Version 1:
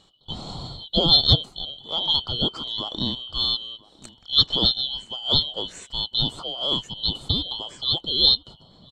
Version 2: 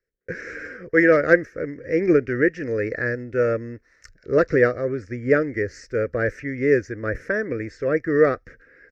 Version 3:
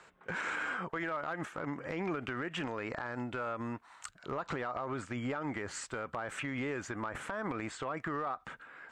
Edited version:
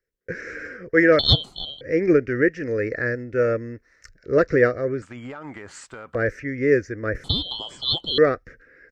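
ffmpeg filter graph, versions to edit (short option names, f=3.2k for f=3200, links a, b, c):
-filter_complex "[0:a]asplit=2[a][b];[1:a]asplit=4[c][d][e][f];[c]atrim=end=1.192[g];[a]atrim=start=1.188:end=1.812[h];[d]atrim=start=1.808:end=5.022[i];[2:a]atrim=start=5.018:end=6.152[j];[e]atrim=start=6.148:end=7.242[k];[b]atrim=start=7.238:end=8.182[l];[f]atrim=start=8.178[m];[g][h]acrossfade=d=0.004:c1=hsin:c2=hsin[n];[n][i]acrossfade=d=0.004:c1=hsin:c2=hsin[o];[o][j]acrossfade=d=0.004:c1=hsin:c2=hsin[p];[p][k]acrossfade=d=0.004:c1=hsin:c2=hsin[q];[q][l]acrossfade=d=0.004:c1=hsin:c2=hsin[r];[r][m]acrossfade=d=0.004:c1=hsin:c2=hsin"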